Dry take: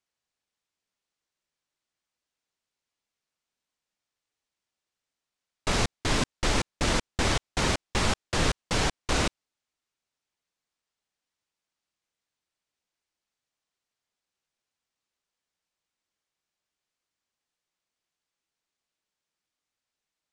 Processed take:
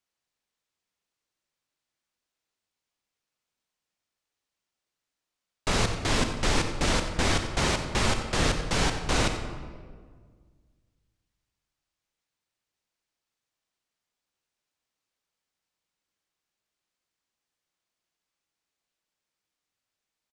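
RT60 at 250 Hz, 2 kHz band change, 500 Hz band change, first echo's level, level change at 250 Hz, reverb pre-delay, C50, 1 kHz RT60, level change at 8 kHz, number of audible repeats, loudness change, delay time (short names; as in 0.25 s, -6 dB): 2.2 s, +1.0 dB, +1.0 dB, -12.5 dB, +1.0 dB, 26 ms, 6.5 dB, 1.6 s, +0.5 dB, 1, +1.0 dB, 91 ms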